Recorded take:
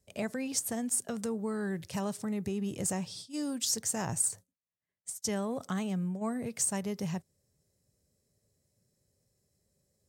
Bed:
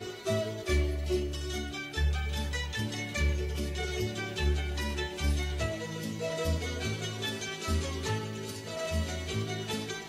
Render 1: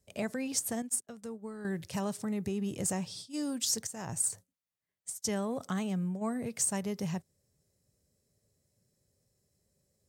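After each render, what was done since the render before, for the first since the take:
0:00.82–0:01.65: expander for the loud parts 2.5 to 1, over −48 dBFS
0:03.87–0:04.31: fade in, from −13.5 dB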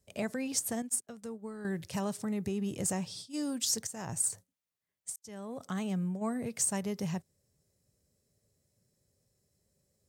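0:05.16–0:05.91: fade in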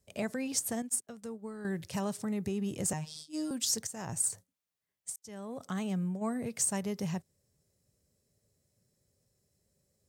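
0:02.93–0:03.51: phases set to zero 154 Hz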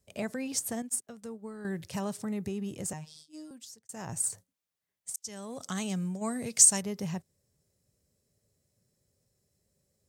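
0:02.36–0:03.89: fade out
0:05.14–0:06.82: parametric band 6,400 Hz +13 dB 2.1 octaves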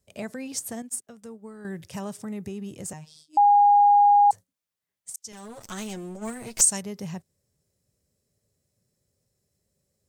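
0:01.05–0:02.56: notch filter 4,200 Hz
0:03.37–0:04.31: beep over 818 Hz −13 dBFS
0:05.32–0:06.61: lower of the sound and its delayed copy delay 9.1 ms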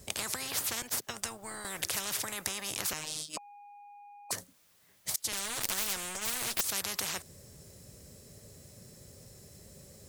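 compressor whose output falls as the input rises −24 dBFS, ratio −1
every bin compressed towards the loudest bin 10 to 1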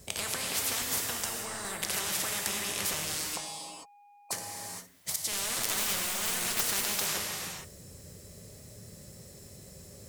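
reverb whose tail is shaped and stops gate 490 ms flat, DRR −1 dB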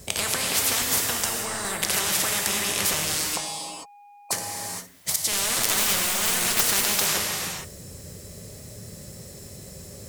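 level +8 dB
brickwall limiter −2 dBFS, peak gain reduction 1.5 dB

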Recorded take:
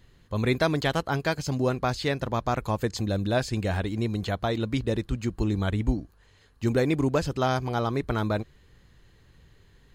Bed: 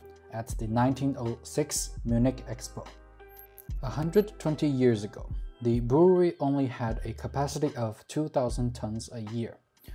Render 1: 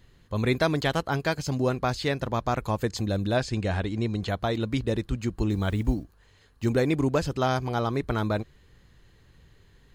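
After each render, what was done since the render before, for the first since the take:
0:03.37–0:04.28: low-pass filter 7,800 Hz
0:05.50–0:06.68: one scale factor per block 7 bits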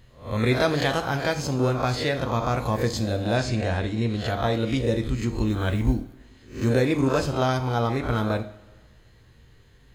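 peak hold with a rise ahead of every peak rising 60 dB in 0.41 s
coupled-rooms reverb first 0.38 s, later 1.5 s, from −16 dB, DRR 6 dB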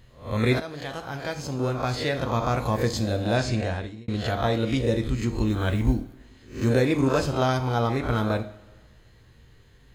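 0:00.60–0:02.38: fade in, from −16 dB
0:03.56–0:04.08: fade out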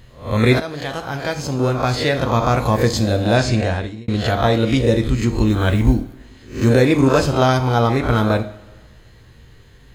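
level +8 dB
brickwall limiter −2 dBFS, peak gain reduction 1.5 dB

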